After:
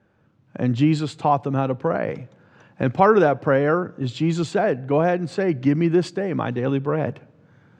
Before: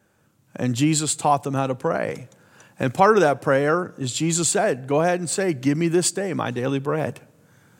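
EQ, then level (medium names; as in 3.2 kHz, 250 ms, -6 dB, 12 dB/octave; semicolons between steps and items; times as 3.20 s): distance through air 230 m; bass shelf 460 Hz +3 dB; 0.0 dB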